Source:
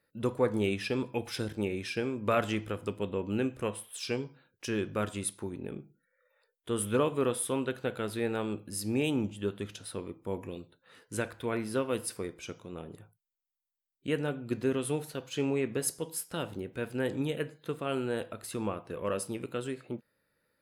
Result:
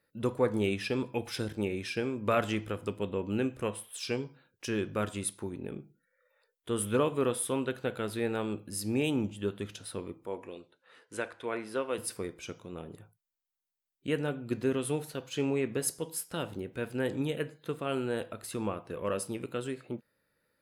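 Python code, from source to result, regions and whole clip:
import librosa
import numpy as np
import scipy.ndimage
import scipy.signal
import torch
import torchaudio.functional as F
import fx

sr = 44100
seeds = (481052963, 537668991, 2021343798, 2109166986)

y = fx.chain(x, sr, fx.resample_bad(factor=2, down='none', up='filtered'),
    fx.bass_treble(bass_db=-14, treble_db=-6), at=(10.26, 11.98))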